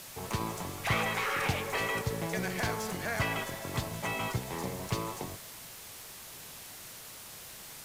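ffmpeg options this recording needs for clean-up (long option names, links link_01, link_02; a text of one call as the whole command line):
ffmpeg -i in.wav -af "afwtdn=0.005" out.wav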